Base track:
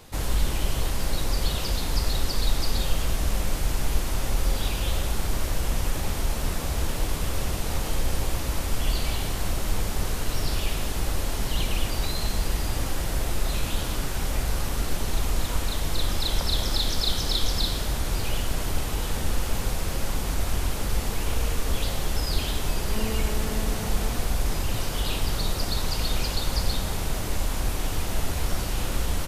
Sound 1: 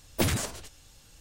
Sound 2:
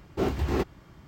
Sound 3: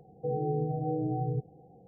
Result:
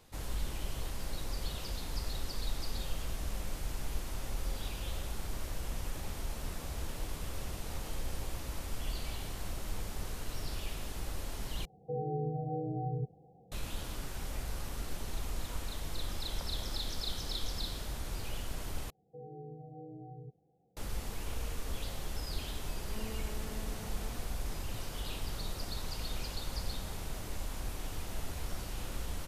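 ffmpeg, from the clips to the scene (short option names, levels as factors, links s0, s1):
-filter_complex "[3:a]asplit=2[s0][s1];[0:a]volume=0.237[s2];[s0]equalizer=f=310:w=1.4:g=-4[s3];[s2]asplit=3[s4][s5][s6];[s4]atrim=end=11.654[s7];[s3]atrim=end=1.87,asetpts=PTS-STARTPTS,volume=0.668[s8];[s5]atrim=start=13.516:end=18.904[s9];[s1]atrim=end=1.87,asetpts=PTS-STARTPTS,volume=0.141[s10];[s6]atrim=start=20.766[s11];[s7][s8]acrossfade=d=0.004:c1=hsin:c2=hsin[s12];[s12][s9]acrossfade=d=0.004:c1=hsin:c2=hsin[s13];[s13][s10]acrossfade=d=0.004:c1=hsin:c2=hsin[s14];[s14][s11]acrossfade=d=0.004:c1=hsin:c2=hsin"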